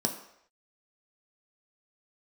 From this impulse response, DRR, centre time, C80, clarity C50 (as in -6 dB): 2.5 dB, 17 ms, 12.0 dB, 10.0 dB